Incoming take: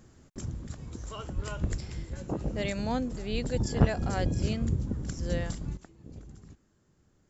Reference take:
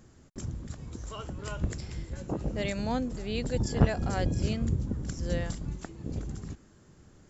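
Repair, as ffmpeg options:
ffmpeg -i in.wav -filter_complex "[0:a]asplit=3[link_01][link_02][link_03];[link_01]afade=type=out:start_time=1.35:duration=0.02[link_04];[link_02]highpass=frequency=140:width=0.5412,highpass=frequency=140:width=1.3066,afade=type=in:start_time=1.35:duration=0.02,afade=type=out:start_time=1.47:duration=0.02[link_05];[link_03]afade=type=in:start_time=1.47:duration=0.02[link_06];[link_04][link_05][link_06]amix=inputs=3:normalize=0,asplit=3[link_07][link_08][link_09];[link_07]afade=type=out:start_time=1.7:duration=0.02[link_10];[link_08]highpass=frequency=140:width=0.5412,highpass=frequency=140:width=1.3066,afade=type=in:start_time=1.7:duration=0.02,afade=type=out:start_time=1.82:duration=0.02[link_11];[link_09]afade=type=in:start_time=1.82:duration=0.02[link_12];[link_10][link_11][link_12]amix=inputs=3:normalize=0,asplit=3[link_13][link_14][link_15];[link_13]afade=type=out:start_time=3.31:duration=0.02[link_16];[link_14]highpass=frequency=140:width=0.5412,highpass=frequency=140:width=1.3066,afade=type=in:start_time=3.31:duration=0.02,afade=type=out:start_time=3.43:duration=0.02[link_17];[link_15]afade=type=in:start_time=3.43:duration=0.02[link_18];[link_16][link_17][link_18]amix=inputs=3:normalize=0,asetnsamples=nb_out_samples=441:pad=0,asendcmd='5.77 volume volume 11dB',volume=0dB" out.wav

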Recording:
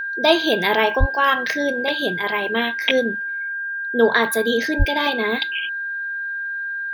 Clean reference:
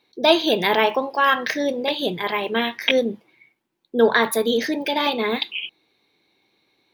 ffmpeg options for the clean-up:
ffmpeg -i in.wav -filter_complex "[0:a]bandreject=frequency=1600:width=30,asplit=3[link_01][link_02][link_03];[link_01]afade=type=out:start_time=0.99:duration=0.02[link_04];[link_02]highpass=frequency=140:width=0.5412,highpass=frequency=140:width=1.3066,afade=type=in:start_time=0.99:duration=0.02,afade=type=out:start_time=1.11:duration=0.02[link_05];[link_03]afade=type=in:start_time=1.11:duration=0.02[link_06];[link_04][link_05][link_06]amix=inputs=3:normalize=0,asplit=3[link_07][link_08][link_09];[link_07]afade=type=out:start_time=4.78:duration=0.02[link_10];[link_08]highpass=frequency=140:width=0.5412,highpass=frequency=140:width=1.3066,afade=type=in:start_time=4.78:duration=0.02,afade=type=out:start_time=4.9:duration=0.02[link_11];[link_09]afade=type=in:start_time=4.9:duration=0.02[link_12];[link_10][link_11][link_12]amix=inputs=3:normalize=0" out.wav

